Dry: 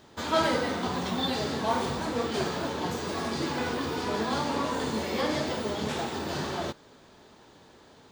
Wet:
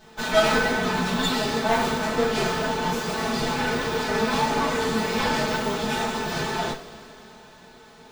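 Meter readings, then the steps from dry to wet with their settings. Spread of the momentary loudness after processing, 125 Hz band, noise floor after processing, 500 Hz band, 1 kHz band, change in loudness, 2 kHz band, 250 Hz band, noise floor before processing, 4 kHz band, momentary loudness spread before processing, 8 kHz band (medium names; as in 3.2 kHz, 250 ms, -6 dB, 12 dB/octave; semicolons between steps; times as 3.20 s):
5 LU, +4.5 dB, -49 dBFS, +5.5 dB, +6.0 dB, +6.0 dB, +9.5 dB, +4.0 dB, -55 dBFS, +5.5 dB, 5 LU, +7.0 dB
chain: comb filter that takes the minimum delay 4.6 ms; two-slope reverb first 0.24 s, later 3.2 s, from -22 dB, DRR -6.5 dB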